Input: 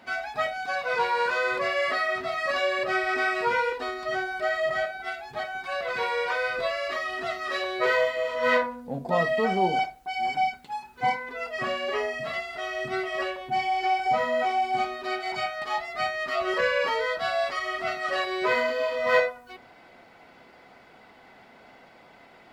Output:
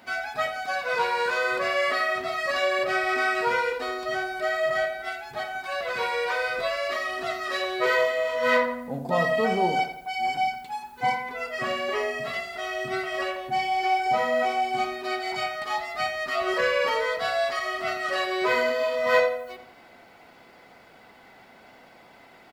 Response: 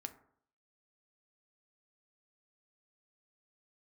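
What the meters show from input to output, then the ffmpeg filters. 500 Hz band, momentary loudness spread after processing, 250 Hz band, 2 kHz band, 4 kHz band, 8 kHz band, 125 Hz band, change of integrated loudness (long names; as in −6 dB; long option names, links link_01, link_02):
+1.0 dB, 7 LU, +1.5 dB, +1.0 dB, +1.5 dB, +4.5 dB, +0.5 dB, +1.0 dB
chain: -filter_complex "[0:a]highshelf=frequency=7800:gain=10,asplit=2[link_01][link_02];[link_02]adelay=86,lowpass=frequency=3700:poles=1,volume=-10dB,asplit=2[link_03][link_04];[link_04]adelay=86,lowpass=frequency=3700:poles=1,volume=0.48,asplit=2[link_05][link_06];[link_06]adelay=86,lowpass=frequency=3700:poles=1,volume=0.48,asplit=2[link_07][link_08];[link_08]adelay=86,lowpass=frequency=3700:poles=1,volume=0.48,asplit=2[link_09][link_10];[link_10]adelay=86,lowpass=frequency=3700:poles=1,volume=0.48[link_11];[link_01][link_03][link_05][link_07][link_09][link_11]amix=inputs=6:normalize=0"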